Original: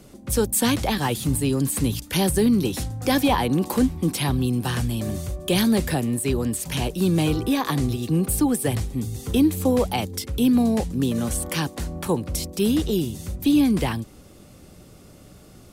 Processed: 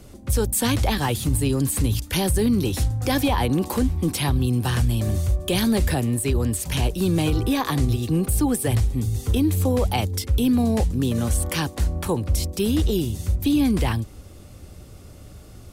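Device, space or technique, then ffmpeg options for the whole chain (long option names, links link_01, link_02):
car stereo with a boomy subwoofer: -af "lowshelf=frequency=120:width_type=q:width=1.5:gain=7,alimiter=limit=-13.5dB:level=0:latency=1:release=24,volume=1dB"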